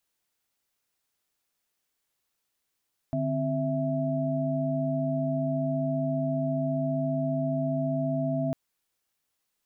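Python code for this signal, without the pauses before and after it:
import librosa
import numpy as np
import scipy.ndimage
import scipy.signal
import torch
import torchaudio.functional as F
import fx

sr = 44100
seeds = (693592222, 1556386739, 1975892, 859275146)

y = fx.chord(sr, length_s=5.4, notes=(50, 60, 76), wave='sine', level_db=-29.5)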